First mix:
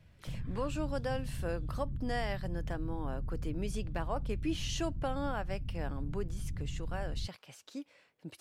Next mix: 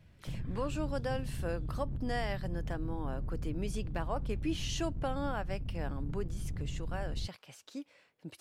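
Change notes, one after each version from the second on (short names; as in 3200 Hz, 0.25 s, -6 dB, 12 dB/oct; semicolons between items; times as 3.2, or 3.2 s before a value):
background: remove Gaussian blur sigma 25 samples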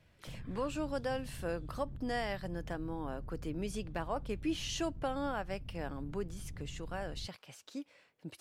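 background -8.0 dB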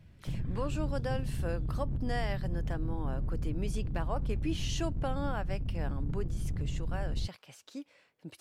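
background +12.0 dB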